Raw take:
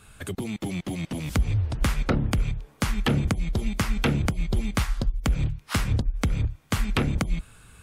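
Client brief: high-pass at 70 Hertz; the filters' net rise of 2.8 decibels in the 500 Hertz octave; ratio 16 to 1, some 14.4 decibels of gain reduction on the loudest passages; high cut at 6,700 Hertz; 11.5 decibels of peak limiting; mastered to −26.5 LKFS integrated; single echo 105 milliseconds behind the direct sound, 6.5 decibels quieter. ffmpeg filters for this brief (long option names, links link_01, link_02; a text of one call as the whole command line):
ffmpeg -i in.wav -af "highpass=70,lowpass=6700,equalizer=frequency=500:width_type=o:gain=3.5,acompressor=threshold=-34dB:ratio=16,alimiter=level_in=5.5dB:limit=-24dB:level=0:latency=1,volume=-5.5dB,aecho=1:1:105:0.473,volume=14.5dB" out.wav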